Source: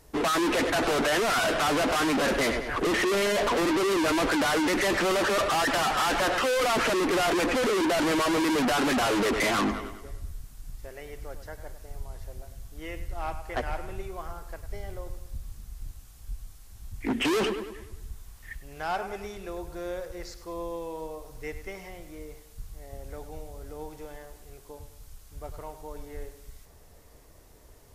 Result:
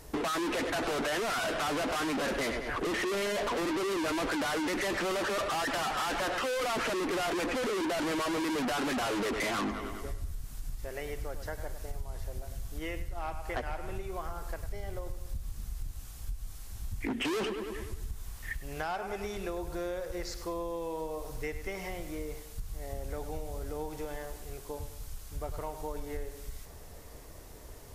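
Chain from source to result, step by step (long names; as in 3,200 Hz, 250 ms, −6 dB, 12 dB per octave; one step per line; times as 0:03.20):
downward compressor, threshold −38 dBFS, peak gain reduction 13 dB
level +5.5 dB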